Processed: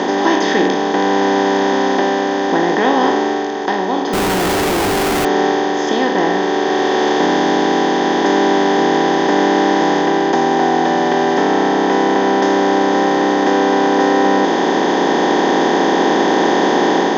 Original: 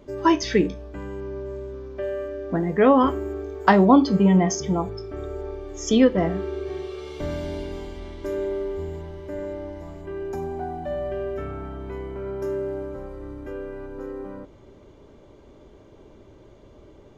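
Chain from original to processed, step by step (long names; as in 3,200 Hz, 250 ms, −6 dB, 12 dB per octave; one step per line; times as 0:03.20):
compressor on every frequency bin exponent 0.2
automatic gain control
loudspeaker in its box 240–6,400 Hz, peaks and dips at 360 Hz +5 dB, 550 Hz −4 dB, 790 Hz +7 dB, 1,200 Hz −6 dB, 1,800 Hz +7 dB, 3,600 Hz +9 dB
0:04.13–0:05.25: comparator with hysteresis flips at −22 dBFS
level −2.5 dB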